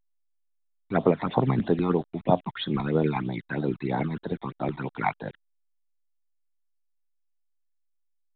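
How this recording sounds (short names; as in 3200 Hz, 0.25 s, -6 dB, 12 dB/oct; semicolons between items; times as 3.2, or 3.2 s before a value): tremolo saw down 9.5 Hz, depth 30%; a quantiser's noise floor 8-bit, dither none; phasing stages 12, 3.1 Hz, lowest notch 480–2300 Hz; A-law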